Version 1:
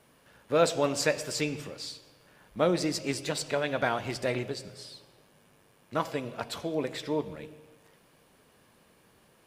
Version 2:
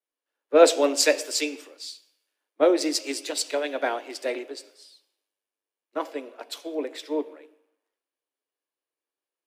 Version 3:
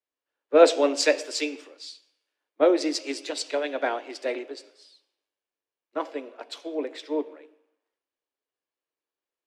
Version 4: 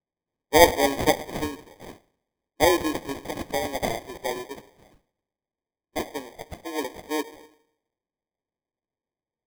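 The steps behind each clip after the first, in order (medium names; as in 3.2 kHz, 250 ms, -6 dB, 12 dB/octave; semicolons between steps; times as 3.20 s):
dynamic bell 1.2 kHz, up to -6 dB, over -43 dBFS, Q 1.3; steep high-pass 270 Hz 72 dB/octave; three bands expanded up and down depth 100%; trim +2 dB
distance through air 72 m
sample-and-hold 32×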